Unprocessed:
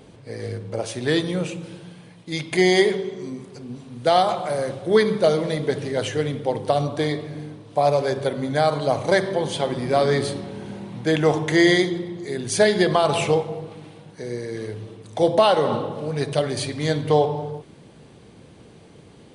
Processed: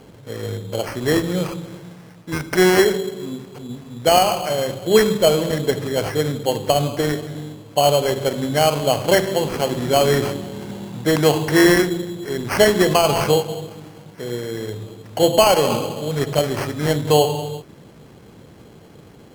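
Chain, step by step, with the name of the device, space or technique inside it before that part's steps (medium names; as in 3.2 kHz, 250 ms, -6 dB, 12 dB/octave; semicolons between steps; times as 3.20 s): crushed at another speed (playback speed 0.5×; sample-and-hold 24×; playback speed 2×); trim +3 dB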